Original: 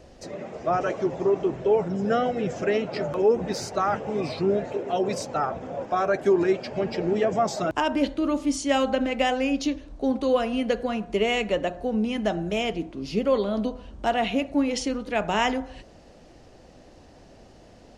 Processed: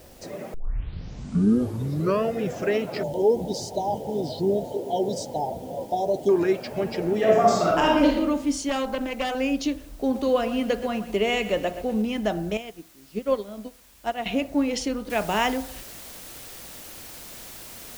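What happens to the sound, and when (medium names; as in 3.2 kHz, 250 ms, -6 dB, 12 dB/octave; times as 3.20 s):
0.54 s: tape start 1.89 s
3.03–6.29 s: brick-wall FIR band-stop 1–2.9 kHz
7.18–8.15 s: reverb throw, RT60 0.98 s, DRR -3 dB
8.69–9.35 s: valve stage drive 20 dB, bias 0.65
9.91–12.02 s: bit-crushed delay 123 ms, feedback 55%, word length 7-bit, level -13 dB
12.57–14.26 s: upward expansion 2.5:1, over -31 dBFS
15.10 s: noise floor step -55 dB -42 dB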